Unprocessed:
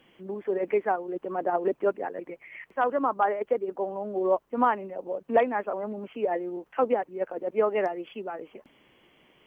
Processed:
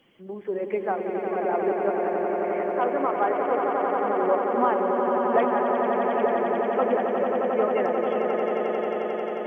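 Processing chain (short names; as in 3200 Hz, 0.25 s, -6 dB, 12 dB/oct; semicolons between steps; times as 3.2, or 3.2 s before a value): bin magnitudes rounded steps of 15 dB; on a send: swelling echo 89 ms, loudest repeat 8, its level -7 dB; on the sum: gain -1 dB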